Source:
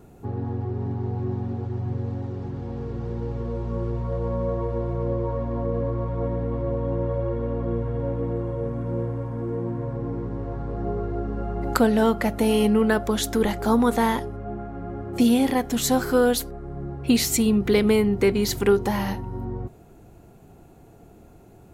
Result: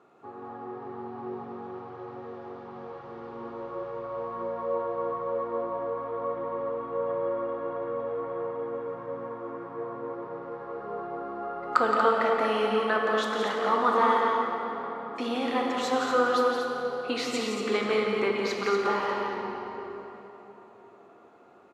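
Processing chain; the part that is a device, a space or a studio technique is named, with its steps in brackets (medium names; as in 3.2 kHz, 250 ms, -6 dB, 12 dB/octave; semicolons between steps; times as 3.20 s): station announcement (band-pass 470–3700 Hz; peaking EQ 1.2 kHz +11.5 dB 0.31 oct; loudspeakers at several distances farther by 59 m -7 dB, 81 m -7 dB; reverberation RT60 3.8 s, pre-delay 12 ms, DRR 1 dB); trim -4.5 dB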